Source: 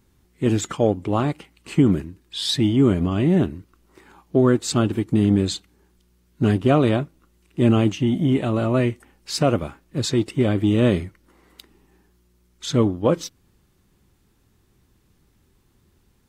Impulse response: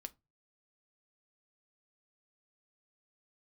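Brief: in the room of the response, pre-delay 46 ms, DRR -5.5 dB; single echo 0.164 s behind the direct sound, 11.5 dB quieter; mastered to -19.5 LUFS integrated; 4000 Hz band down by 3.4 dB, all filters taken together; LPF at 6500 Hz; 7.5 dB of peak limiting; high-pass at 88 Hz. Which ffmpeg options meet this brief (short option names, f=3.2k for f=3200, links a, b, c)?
-filter_complex "[0:a]highpass=88,lowpass=6.5k,equalizer=f=4k:t=o:g=-3.5,alimiter=limit=-11.5dB:level=0:latency=1,aecho=1:1:164:0.266,asplit=2[a][b];[1:a]atrim=start_sample=2205,adelay=46[c];[b][c]afir=irnorm=-1:irlink=0,volume=10dB[d];[a][d]amix=inputs=2:normalize=0,volume=-2.5dB"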